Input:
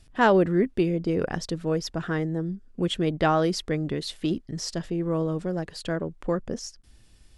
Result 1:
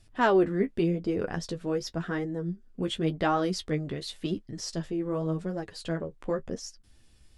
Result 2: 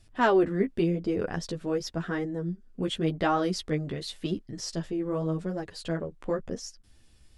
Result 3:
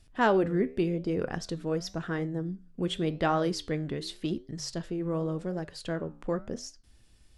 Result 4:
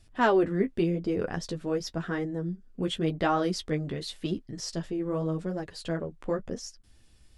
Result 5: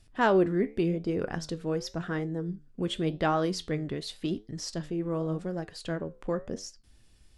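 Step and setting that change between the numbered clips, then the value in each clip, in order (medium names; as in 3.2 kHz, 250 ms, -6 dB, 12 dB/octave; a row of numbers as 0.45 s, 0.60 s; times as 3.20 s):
flange, regen: +26%, +5%, -82%, -20%, +77%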